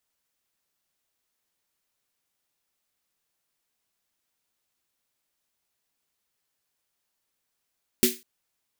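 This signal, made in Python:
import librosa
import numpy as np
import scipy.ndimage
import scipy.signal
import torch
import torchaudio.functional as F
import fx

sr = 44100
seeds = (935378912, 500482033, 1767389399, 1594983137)

y = fx.drum_snare(sr, seeds[0], length_s=0.2, hz=240.0, second_hz=370.0, noise_db=0.0, noise_from_hz=2000.0, decay_s=0.22, noise_decay_s=0.28)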